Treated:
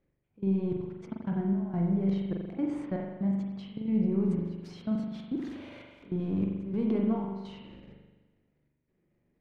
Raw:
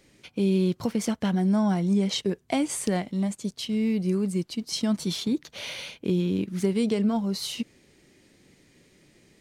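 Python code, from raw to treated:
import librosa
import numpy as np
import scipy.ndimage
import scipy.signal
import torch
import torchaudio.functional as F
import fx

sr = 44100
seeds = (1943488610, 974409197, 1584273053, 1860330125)

y = fx.crossing_spikes(x, sr, level_db=-28.0, at=(4.24, 6.77))
y = scipy.signal.sosfilt(scipy.signal.butter(2, 1500.0, 'lowpass', fs=sr, output='sos'), y)
y = fx.low_shelf(y, sr, hz=170.0, db=8.0)
y = fx.transient(y, sr, attack_db=-10, sustain_db=10)
y = fx.level_steps(y, sr, step_db=24)
y = fx.step_gate(y, sr, bpm=147, pattern='x..xxxxxx.xxxx', floor_db=-12.0, edge_ms=4.5)
y = fx.rev_spring(y, sr, rt60_s=1.2, pass_ms=(41,), chirp_ms=55, drr_db=0.0)
y = y * 10.0 ** (-5.0 / 20.0)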